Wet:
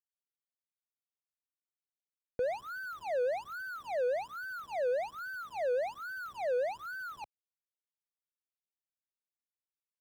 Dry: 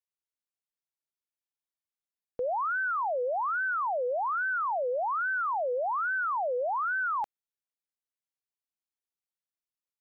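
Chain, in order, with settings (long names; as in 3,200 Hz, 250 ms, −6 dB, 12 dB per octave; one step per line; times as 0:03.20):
running median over 41 samples
parametric band 82 Hz +8.5 dB 2.9 octaves
expander for the loud parts 1.5 to 1, over −40 dBFS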